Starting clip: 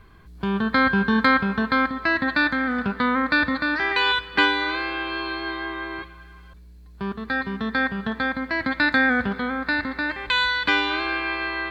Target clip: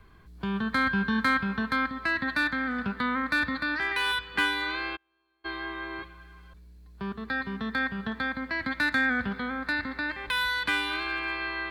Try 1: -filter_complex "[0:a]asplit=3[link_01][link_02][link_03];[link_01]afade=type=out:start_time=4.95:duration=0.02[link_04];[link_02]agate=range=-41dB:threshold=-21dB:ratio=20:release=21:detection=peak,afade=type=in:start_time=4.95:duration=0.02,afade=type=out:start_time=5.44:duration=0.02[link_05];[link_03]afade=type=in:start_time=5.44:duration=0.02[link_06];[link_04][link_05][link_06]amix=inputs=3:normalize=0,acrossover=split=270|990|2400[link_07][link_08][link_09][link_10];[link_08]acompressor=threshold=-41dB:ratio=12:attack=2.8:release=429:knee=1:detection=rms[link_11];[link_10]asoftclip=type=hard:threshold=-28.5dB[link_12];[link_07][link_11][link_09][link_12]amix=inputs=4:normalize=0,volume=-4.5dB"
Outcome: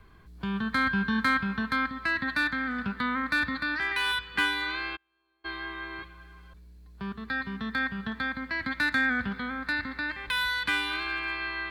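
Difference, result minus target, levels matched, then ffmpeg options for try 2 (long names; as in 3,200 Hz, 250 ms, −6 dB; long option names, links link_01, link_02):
downward compressor: peak gain reduction +8 dB
-filter_complex "[0:a]asplit=3[link_01][link_02][link_03];[link_01]afade=type=out:start_time=4.95:duration=0.02[link_04];[link_02]agate=range=-41dB:threshold=-21dB:ratio=20:release=21:detection=peak,afade=type=in:start_time=4.95:duration=0.02,afade=type=out:start_time=5.44:duration=0.02[link_05];[link_03]afade=type=in:start_time=5.44:duration=0.02[link_06];[link_04][link_05][link_06]amix=inputs=3:normalize=0,acrossover=split=270|990|2400[link_07][link_08][link_09][link_10];[link_08]acompressor=threshold=-32.5dB:ratio=12:attack=2.8:release=429:knee=1:detection=rms[link_11];[link_10]asoftclip=type=hard:threshold=-28.5dB[link_12];[link_07][link_11][link_09][link_12]amix=inputs=4:normalize=0,volume=-4.5dB"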